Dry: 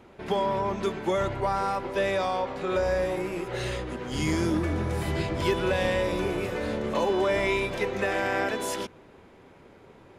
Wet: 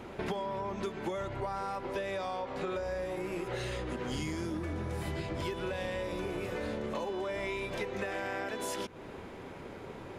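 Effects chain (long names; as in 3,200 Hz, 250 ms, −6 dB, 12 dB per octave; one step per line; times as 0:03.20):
downward compressor 12 to 1, threshold −40 dBFS, peak gain reduction 20 dB
level +7 dB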